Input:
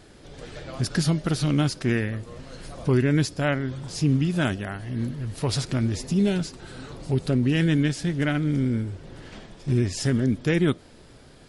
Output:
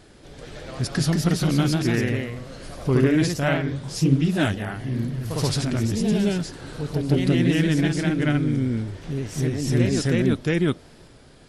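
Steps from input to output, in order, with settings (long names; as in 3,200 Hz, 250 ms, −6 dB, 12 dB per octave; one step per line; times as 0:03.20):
delay with pitch and tempo change per echo 232 ms, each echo +1 semitone, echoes 2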